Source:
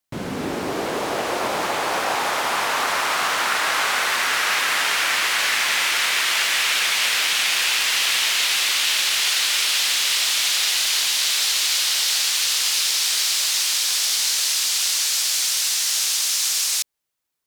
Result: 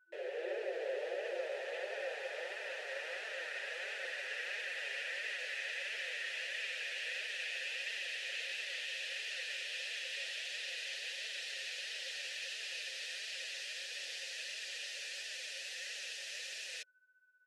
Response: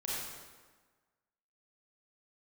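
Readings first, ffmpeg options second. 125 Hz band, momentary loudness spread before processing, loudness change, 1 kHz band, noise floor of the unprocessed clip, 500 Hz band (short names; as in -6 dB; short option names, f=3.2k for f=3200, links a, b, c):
n/a, 5 LU, -21.5 dB, -30.0 dB, -29 dBFS, -11.5 dB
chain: -filter_complex "[0:a]afftfilt=real='re*between(b*sr/4096,340,12000)':imag='im*between(b*sr/4096,340,12000)':win_size=4096:overlap=0.75,asplit=2[a][b];[b]asoftclip=type=tanh:threshold=-24.5dB,volume=-12dB[c];[a][c]amix=inputs=2:normalize=0,aeval=exprs='val(0)+0.00355*sin(2*PI*1500*n/s)':c=same,acrossover=split=4500[d][e];[d]alimiter=limit=-20dB:level=0:latency=1:release=75[f];[e]acrusher=bits=7:mix=0:aa=0.000001[g];[f][g]amix=inputs=2:normalize=0,flanger=delay=4.4:depth=3.3:regen=7:speed=1.5:shape=triangular,acrusher=bits=8:mode=log:mix=0:aa=0.000001,asplit=3[h][i][j];[h]bandpass=f=530:t=q:w=8,volume=0dB[k];[i]bandpass=f=1.84k:t=q:w=8,volume=-6dB[l];[j]bandpass=f=2.48k:t=q:w=8,volume=-9dB[m];[k][l][m]amix=inputs=3:normalize=0,volume=1dB"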